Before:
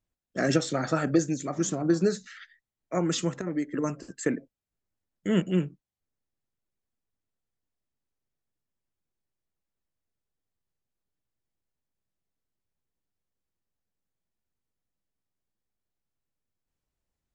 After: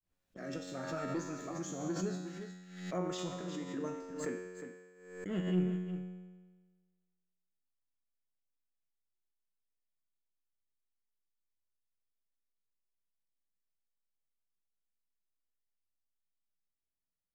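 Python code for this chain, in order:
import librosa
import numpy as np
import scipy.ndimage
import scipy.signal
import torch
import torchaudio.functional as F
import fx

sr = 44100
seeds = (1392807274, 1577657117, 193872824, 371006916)

y = fx.fade_in_head(x, sr, length_s=1.07)
y = fx.high_shelf(y, sr, hz=6300.0, db=-7.5)
y = fx.leveller(y, sr, passes=1)
y = fx.comb_fb(y, sr, f0_hz=91.0, decay_s=1.4, harmonics='all', damping=0.0, mix_pct=90)
y = y + 10.0 ** (-9.0 / 20.0) * np.pad(y, (int(359 * sr / 1000.0), 0))[:len(y)]
y = fx.pre_swell(y, sr, db_per_s=68.0)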